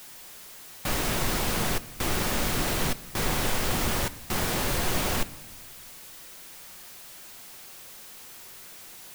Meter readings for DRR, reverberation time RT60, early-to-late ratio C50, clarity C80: 12.0 dB, 1.2 s, 18.5 dB, 20.0 dB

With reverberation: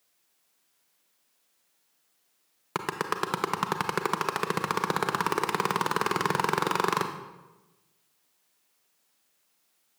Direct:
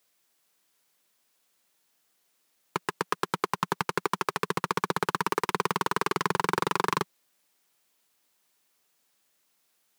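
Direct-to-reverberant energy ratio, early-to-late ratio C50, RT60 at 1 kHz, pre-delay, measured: 6.5 dB, 8.0 dB, 1.0 s, 31 ms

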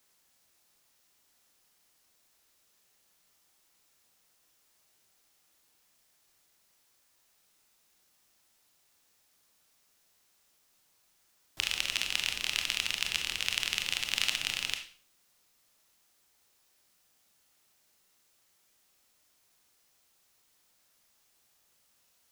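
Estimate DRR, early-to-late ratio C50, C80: 4.5 dB, 9.0 dB, 13.5 dB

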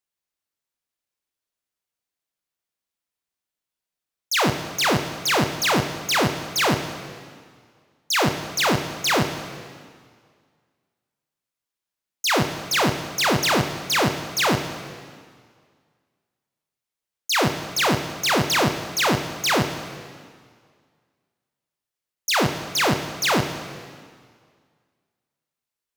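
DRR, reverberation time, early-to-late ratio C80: 6.5 dB, 1.9 s, 9.5 dB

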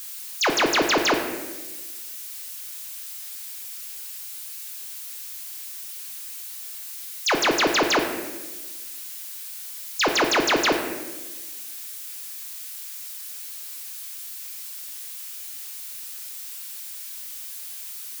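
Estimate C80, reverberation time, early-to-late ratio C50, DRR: 7.5 dB, 1.2 s, 6.0 dB, 2.5 dB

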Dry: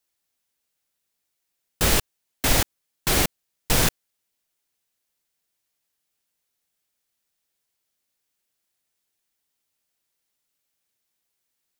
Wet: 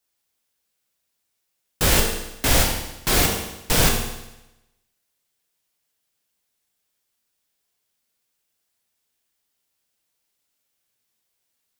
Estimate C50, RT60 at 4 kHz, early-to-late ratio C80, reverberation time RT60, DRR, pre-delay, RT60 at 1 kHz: 4.0 dB, 0.95 s, 6.5 dB, 0.95 s, 0.5 dB, 14 ms, 0.95 s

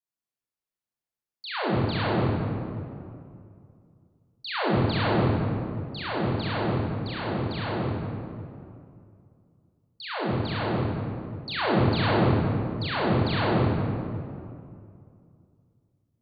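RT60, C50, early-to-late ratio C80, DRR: 2.4 s, -4.0 dB, -1.5 dB, -8.0 dB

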